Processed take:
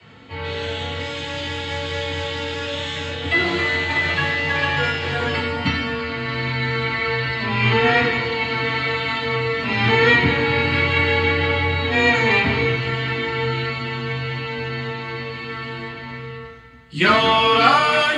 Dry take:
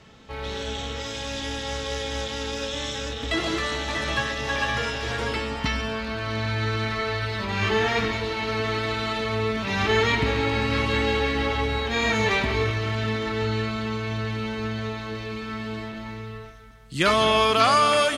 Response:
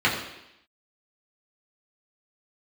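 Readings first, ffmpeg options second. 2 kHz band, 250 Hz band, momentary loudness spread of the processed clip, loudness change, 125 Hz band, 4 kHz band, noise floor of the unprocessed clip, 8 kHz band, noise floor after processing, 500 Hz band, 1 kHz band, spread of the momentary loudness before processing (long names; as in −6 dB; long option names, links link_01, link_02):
+8.0 dB, +3.0 dB, 14 LU, +5.5 dB, +4.5 dB, +4.5 dB, −36 dBFS, can't be measured, −34 dBFS, +3.5 dB, +4.0 dB, 12 LU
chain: -filter_complex "[0:a]afreqshift=19[link_01];[1:a]atrim=start_sample=2205,afade=type=out:start_time=0.15:duration=0.01,atrim=end_sample=7056[link_02];[link_01][link_02]afir=irnorm=-1:irlink=0,volume=-10.5dB"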